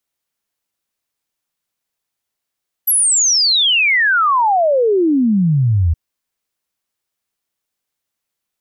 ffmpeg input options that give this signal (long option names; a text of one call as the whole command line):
ffmpeg -f lavfi -i "aevalsrc='0.299*clip(min(t,3.07-t)/0.01,0,1)*sin(2*PI*12000*3.07/log(77/12000)*(exp(log(77/12000)*t/3.07)-1))':duration=3.07:sample_rate=44100" out.wav